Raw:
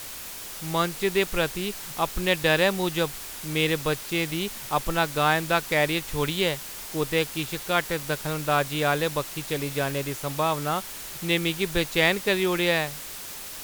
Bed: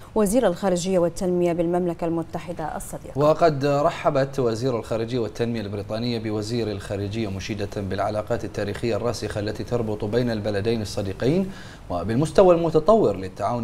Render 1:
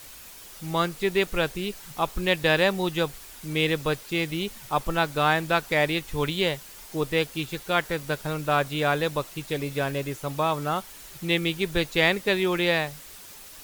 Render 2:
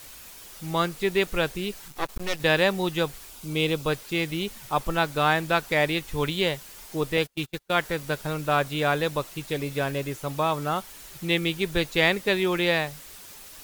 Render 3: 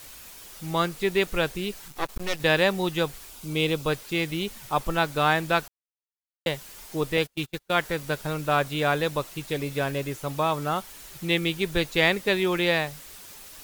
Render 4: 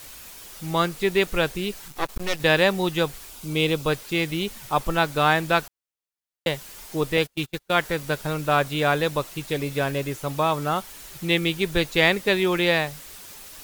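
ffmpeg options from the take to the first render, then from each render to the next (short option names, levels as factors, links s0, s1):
-af "afftdn=nr=8:nf=-38"
-filter_complex "[0:a]asettb=1/sr,asplit=3[s0][s1][s2];[s0]atrim=end=1.884[s3];[s1]atrim=start=1.88:end=2.4,asetpts=PTS-STARTPTS,afade=t=in:d=0.004:c=qsin,afade=t=out:st=0.516:d=0.004:c=qsin,aeval=exprs='max(val(0),0)':c=same[s4];[s2]atrim=start=2.396[s5];[s3][s4]acrossfade=d=0.004:c1=hsin:c2=qsin[s6];[s6][s5]acrossfade=d=0.004:c1=qsin:c2=hsin,asettb=1/sr,asplit=3[s7][s8][s9];[s7]atrim=end=3.294[s10];[s8]atrim=start=3.29:end=3.88,asetpts=PTS-STARTPTS,afade=t=in:d=0.004:c=qsin,afade=t=out:st=0.586:d=0.004:c=qsin,equalizer=f=1800:w=4:g=-11.5[s11];[s9]atrim=start=3.876[s12];[s10][s11]acrossfade=d=0.004:c1=hsin:c2=qsin[s13];[s13][s12]acrossfade=d=0.004:c1=qsin:c2=hsin,asettb=1/sr,asplit=3[s14][s15][s16];[s14]atrim=end=7.174[s17];[s15]atrim=start=7.17:end=7.71,asetpts=PTS-STARTPTS,afade=t=in:d=0.004:c=qsin,afade=t=out:st=0.536:d=0.004:c=qsin,agate=range=0.0282:threshold=0.0224:ratio=16:release=100:detection=peak[s18];[s16]atrim=start=7.706[s19];[s17][s18]acrossfade=d=0.004:c1=hsin:c2=qsin[s20];[s20][s19]acrossfade=d=0.004:c1=qsin:c2=hsin"
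-filter_complex "[0:a]asplit=3[s0][s1][s2];[s0]atrim=end=5.68,asetpts=PTS-STARTPTS,afade=t=out:st=5.676:d=0.004:c=hsin[s3];[s1]atrim=start=5.68:end=6.46,asetpts=PTS-STARTPTS,volume=0[s4];[s2]atrim=start=6.46,asetpts=PTS-STARTPTS,afade=t=in:d=0.004:c=hsin[s5];[s3][s4][s5]concat=n=3:v=0:a=1"
-af "volume=1.33"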